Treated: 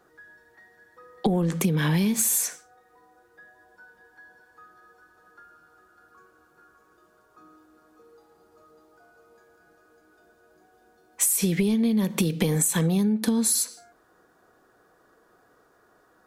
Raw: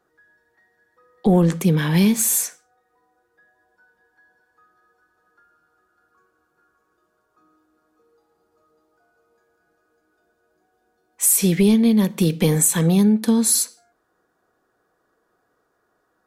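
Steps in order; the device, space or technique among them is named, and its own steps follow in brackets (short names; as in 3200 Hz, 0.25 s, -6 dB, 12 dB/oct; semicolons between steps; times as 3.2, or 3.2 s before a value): serial compression, peaks first (compressor, threshold -23 dBFS, peak gain reduction 11 dB; compressor 2:1, threshold -31 dBFS, peak gain reduction 6 dB); gain +7.5 dB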